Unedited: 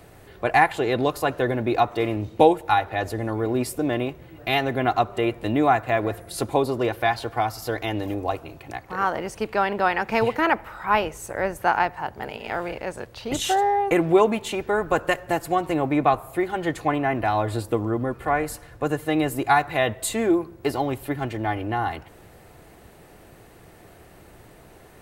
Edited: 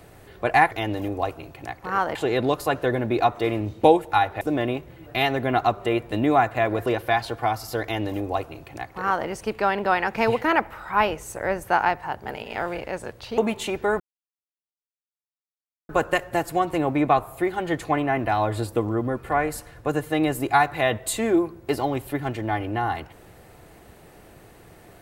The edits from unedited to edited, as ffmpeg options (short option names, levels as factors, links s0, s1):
-filter_complex "[0:a]asplit=7[s0][s1][s2][s3][s4][s5][s6];[s0]atrim=end=0.712[s7];[s1]atrim=start=7.768:end=9.212[s8];[s2]atrim=start=0.708:end=2.972[s9];[s3]atrim=start=3.728:end=6.182[s10];[s4]atrim=start=6.798:end=13.322[s11];[s5]atrim=start=14.228:end=14.85,asetpts=PTS-STARTPTS,afade=t=out:st=0.618:d=0.004:c=hsin,apad=pad_dur=1.89[s12];[s6]atrim=start=14.85,asetpts=PTS-STARTPTS,afade=t=in:d=0.004:c=hsin[s13];[s7][s8]acrossfade=d=0.004:c1=hsin:c2=hsin[s14];[s14][s9]acrossfade=d=0.004:c1=hsin:c2=hsin[s15];[s15][s10]acrossfade=d=0.004:c1=hsin:c2=hsin[s16];[s16][s11]acrossfade=d=0.004:c1=hsin:c2=hsin[s17];[s12][s13]concat=n=2:v=0:a=1[s18];[s17][s18]acrossfade=d=0.004:c1=hsin:c2=hsin"